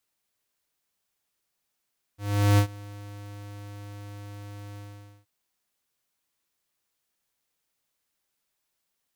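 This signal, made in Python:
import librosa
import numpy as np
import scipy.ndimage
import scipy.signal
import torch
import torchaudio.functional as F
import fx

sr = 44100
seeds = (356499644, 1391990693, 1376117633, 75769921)

y = fx.adsr_tone(sr, wave='square', hz=102.0, attack_ms=400.0, decay_ms=89.0, sustain_db=-23.5, held_s=2.59, release_ms=486.0, level_db=-17.5)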